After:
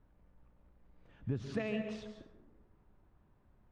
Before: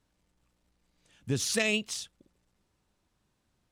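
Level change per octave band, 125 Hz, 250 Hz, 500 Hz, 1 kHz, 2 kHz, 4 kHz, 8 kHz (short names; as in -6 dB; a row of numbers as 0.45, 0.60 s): -3.5, -4.0, -5.5, -6.0, -14.5, -20.0, -30.5 dB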